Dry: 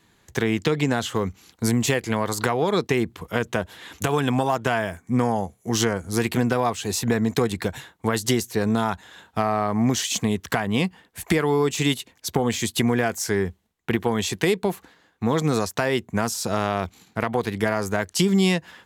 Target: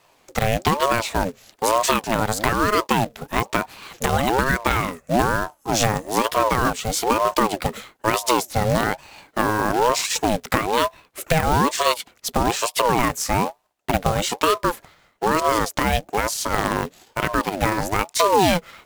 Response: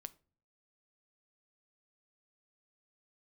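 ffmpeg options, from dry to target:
-af "acrusher=bits=3:mode=log:mix=0:aa=0.000001,aeval=exprs='val(0)*sin(2*PI*580*n/s+580*0.45/1.1*sin(2*PI*1.1*n/s))':c=same,volume=5dB"

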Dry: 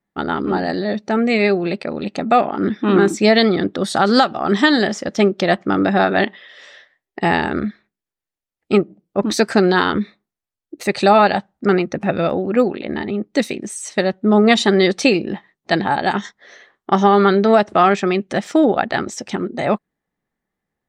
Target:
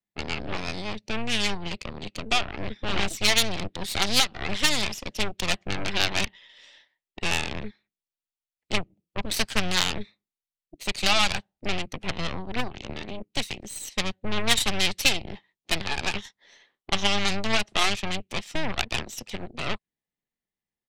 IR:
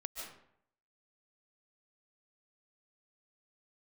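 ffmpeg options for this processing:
-filter_complex "[0:a]aeval=exprs='0.794*(cos(1*acos(clip(val(0)/0.794,-1,1)))-cos(1*PI/2))+0.251*(cos(3*acos(clip(val(0)/0.794,-1,1)))-cos(3*PI/2))+0.0794*(cos(4*acos(clip(val(0)/0.794,-1,1)))-cos(4*PI/2))+0.0501*(cos(5*acos(clip(val(0)/0.794,-1,1)))-cos(5*PI/2))+0.0631*(cos(8*acos(clip(val(0)/0.794,-1,1)))-cos(8*PI/2))':c=same,asplit=2[a][b];[b]asetrate=22050,aresample=44100,atempo=2,volume=-11dB[c];[a][c]amix=inputs=2:normalize=0,highshelf=f=2k:t=q:w=1.5:g=7.5,acrossover=split=170|710[d][e][f];[e]acompressor=threshold=-29dB:ratio=6[g];[d][g][f]amix=inputs=3:normalize=0,volume=-7dB"

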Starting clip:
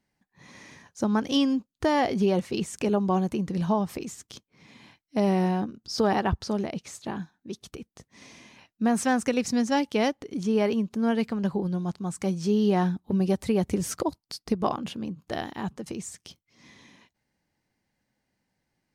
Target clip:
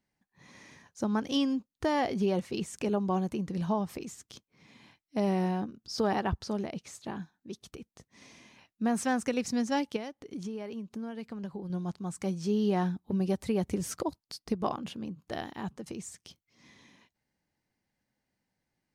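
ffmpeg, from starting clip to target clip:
-filter_complex "[0:a]asettb=1/sr,asplit=3[a][b][c];[a]atrim=end=9.964[d];[b]atrim=start=9.96:end=11.7,asetpts=PTS-STARTPTS,afade=t=in:d=0.004:c=qsin,afade=t=out:st=1.736:d=0.004:c=qsin,acompressor=threshold=-30dB:ratio=10[e];[c]atrim=start=11.696[f];[d][e]acrossfade=d=0.004:c1=hsin:c2=qsin[g];[g][f]acrossfade=d=0.004:c1=qsin:c2=hsin,volume=-5dB"

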